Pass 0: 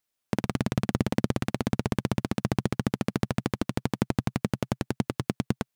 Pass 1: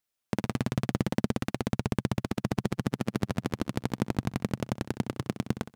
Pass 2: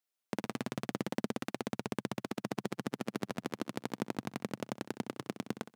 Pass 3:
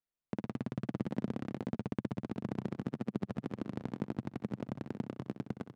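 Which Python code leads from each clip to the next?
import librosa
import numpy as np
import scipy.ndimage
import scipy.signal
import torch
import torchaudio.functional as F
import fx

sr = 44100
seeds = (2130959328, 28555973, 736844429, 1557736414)

y1 = fx.room_flutter(x, sr, wall_m=11.0, rt60_s=0.29)
y1 = y1 * librosa.db_to_amplitude(-2.5)
y2 = scipy.signal.sosfilt(scipy.signal.butter(2, 230.0, 'highpass', fs=sr, output='sos'), y1)
y2 = y2 * librosa.db_to_amplitude(-4.5)
y3 = fx.riaa(y2, sr, side='playback')
y3 = y3 + 10.0 ** (-9.0 / 20.0) * np.pad(y3, (int(502 * sr / 1000.0), 0))[:len(y3)]
y3 = y3 * librosa.db_to_amplitude(-6.5)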